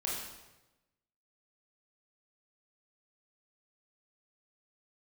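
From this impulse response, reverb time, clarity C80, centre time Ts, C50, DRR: 1.0 s, 4.0 dB, 66 ms, 1.0 dB, -5.0 dB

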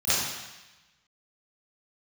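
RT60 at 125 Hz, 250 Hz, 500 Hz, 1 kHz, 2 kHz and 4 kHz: 1.1, 1.0, 1.0, 1.1, 1.2, 1.2 s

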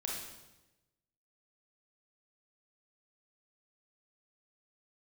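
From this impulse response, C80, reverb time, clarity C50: 4.0 dB, 1.0 s, 1.0 dB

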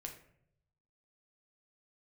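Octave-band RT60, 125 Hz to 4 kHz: 1.3, 0.85, 0.80, 0.60, 0.60, 0.40 s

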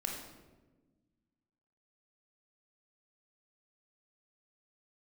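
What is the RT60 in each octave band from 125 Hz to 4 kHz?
2.0, 2.0, 1.5, 1.0, 0.90, 0.75 s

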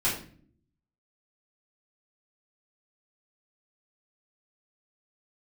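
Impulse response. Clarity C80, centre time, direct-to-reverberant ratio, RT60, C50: 10.0 dB, 33 ms, -9.5 dB, not exponential, 5.5 dB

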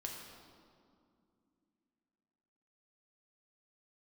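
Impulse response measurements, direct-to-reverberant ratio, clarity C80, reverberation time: -0.5 dB, 3.5 dB, 2.4 s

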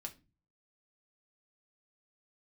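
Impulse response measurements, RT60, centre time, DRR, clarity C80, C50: 0.30 s, 7 ms, 2.5 dB, 24.0 dB, 17.0 dB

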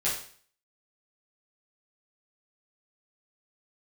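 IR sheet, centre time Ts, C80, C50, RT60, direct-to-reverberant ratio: 37 ms, 9.0 dB, 4.5 dB, 0.50 s, -9.5 dB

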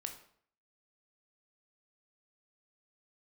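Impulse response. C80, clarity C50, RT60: 13.0 dB, 9.0 dB, 0.60 s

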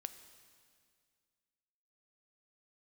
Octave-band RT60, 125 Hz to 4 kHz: 2.3, 2.3, 2.1, 2.0, 2.0, 2.0 s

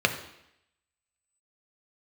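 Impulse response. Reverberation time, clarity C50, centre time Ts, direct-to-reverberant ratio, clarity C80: 0.80 s, 10.5 dB, 12 ms, 5.0 dB, 13.0 dB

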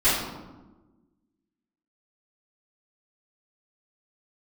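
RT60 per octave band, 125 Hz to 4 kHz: 1.5, 1.7, 1.3, 1.1, 0.80, 0.65 s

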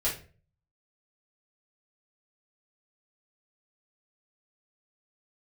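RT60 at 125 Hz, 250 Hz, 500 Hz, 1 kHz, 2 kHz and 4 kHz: 0.70, 0.55, 0.45, 0.35, 0.35, 0.30 s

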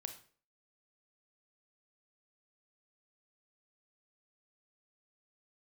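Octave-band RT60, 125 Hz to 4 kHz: 0.45, 0.50, 0.50, 0.40, 0.40, 0.35 s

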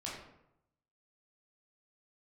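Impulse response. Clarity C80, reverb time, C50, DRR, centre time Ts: 5.5 dB, 0.80 s, 2.5 dB, -5.5 dB, 52 ms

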